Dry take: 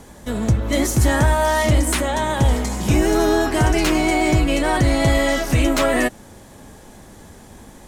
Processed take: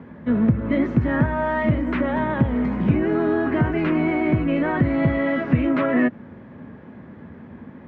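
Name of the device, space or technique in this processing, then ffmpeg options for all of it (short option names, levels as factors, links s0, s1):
bass amplifier: -af "acompressor=threshold=0.141:ratio=6,highpass=f=75:w=0.5412,highpass=f=75:w=1.3066,equalizer=f=160:t=q:w=4:g=7,equalizer=f=240:t=q:w=4:g=8,equalizer=f=780:t=q:w=4:g=-7,lowpass=f=2200:w=0.5412,lowpass=f=2200:w=1.3066"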